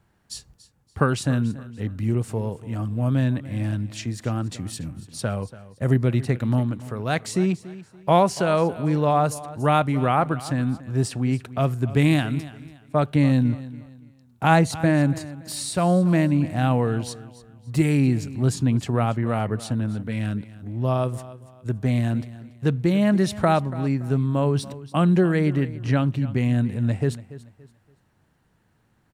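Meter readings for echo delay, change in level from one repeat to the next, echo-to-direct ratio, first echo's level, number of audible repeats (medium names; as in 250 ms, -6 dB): 285 ms, -10.0 dB, -16.5 dB, -17.0 dB, 2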